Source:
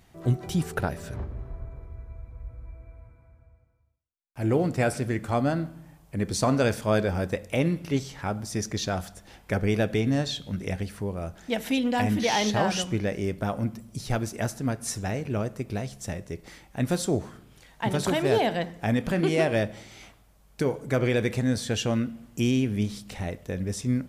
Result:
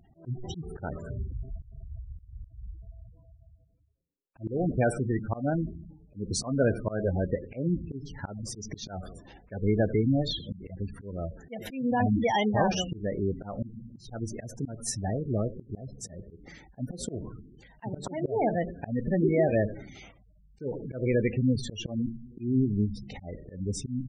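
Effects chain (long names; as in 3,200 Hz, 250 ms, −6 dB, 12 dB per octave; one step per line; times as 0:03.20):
echo with shifted repeats 92 ms, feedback 51%, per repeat −120 Hz, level −16 dB
gate on every frequency bin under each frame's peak −15 dB strong
volume swells 195 ms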